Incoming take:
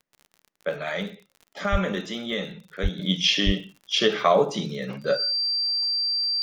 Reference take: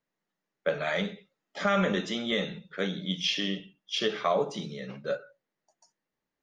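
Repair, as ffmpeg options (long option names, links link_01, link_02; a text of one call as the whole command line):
ffmpeg -i in.wav -filter_complex "[0:a]adeclick=threshold=4,bandreject=frequency=4700:width=30,asplit=3[link_01][link_02][link_03];[link_01]afade=type=out:start_time=1.71:duration=0.02[link_04];[link_02]highpass=frequency=140:width=0.5412,highpass=frequency=140:width=1.3066,afade=type=in:start_time=1.71:duration=0.02,afade=type=out:start_time=1.83:duration=0.02[link_05];[link_03]afade=type=in:start_time=1.83:duration=0.02[link_06];[link_04][link_05][link_06]amix=inputs=3:normalize=0,asplit=3[link_07][link_08][link_09];[link_07]afade=type=out:start_time=2.82:duration=0.02[link_10];[link_08]highpass=frequency=140:width=0.5412,highpass=frequency=140:width=1.3066,afade=type=in:start_time=2.82:duration=0.02,afade=type=out:start_time=2.94:duration=0.02[link_11];[link_09]afade=type=in:start_time=2.94:duration=0.02[link_12];[link_10][link_11][link_12]amix=inputs=3:normalize=0,asplit=3[link_13][link_14][link_15];[link_13]afade=type=out:start_time=3.45:duration=0.02[link_16];[link_14]highpass=frequency=140:width=0.5412,highpass=frequency=140:width=1.3066,afade=type=in:start_time=3.45:duration=0.02,afade=type=out:start_time=3.57:duration=0.02[link_17];[link_15]afade=type=in:start_time=3.57:duration=0.02[link_18];[link_16][link_17][link_18]amix=inputs=3:normalize=0,asetnsamples=nb_out_samples=441:pad=0,asendcmd='2.99 volume volume -7.5dB',volume=0dB" out.wav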